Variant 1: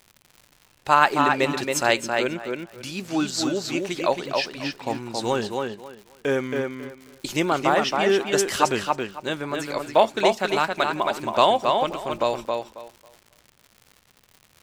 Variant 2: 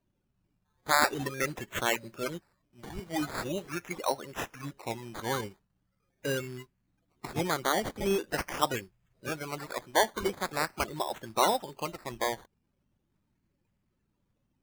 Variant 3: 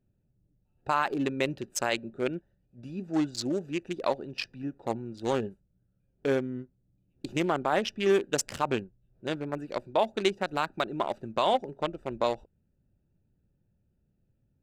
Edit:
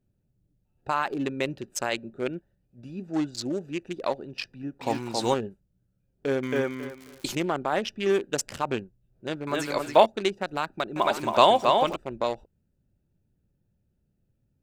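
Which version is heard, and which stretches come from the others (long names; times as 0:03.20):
3
0:04.81–0:05.34: punch in from 1
0:06.43–0:07.35: punch in from 1
0:09.47–0:10.06: punch in from 1
0:10.96–0:11.96: punch in from 1
not used: 2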